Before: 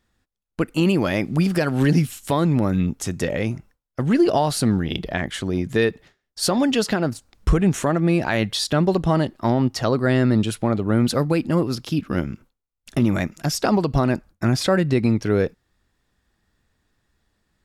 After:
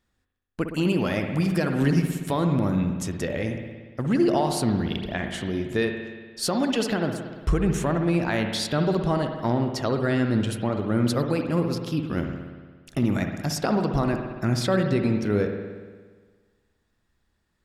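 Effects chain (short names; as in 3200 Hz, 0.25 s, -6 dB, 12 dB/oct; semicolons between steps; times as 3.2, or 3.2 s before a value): spring tank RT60 1.5 s, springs 58 ms, chirp 50 ms, DRR 4.5 dB; gain -5 dB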